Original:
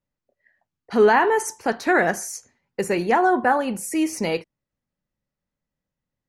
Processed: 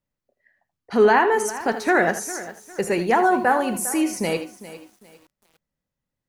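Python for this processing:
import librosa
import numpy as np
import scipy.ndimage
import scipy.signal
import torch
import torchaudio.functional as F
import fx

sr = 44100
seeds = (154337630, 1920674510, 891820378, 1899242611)

y = fx.high_shelf(x, sr, hz=8800.0, db=10.5, at=(3.07, 3.99))
y = y + 10.0 ** (-12.5 / 20.0) * np.pad(y, (int(80 * sr / 1000.0), 0))[:len(y)]
y = fx.echo_crushed(y, sr, ms=403, feedback_pct=35, bits=7, wet_db=-15)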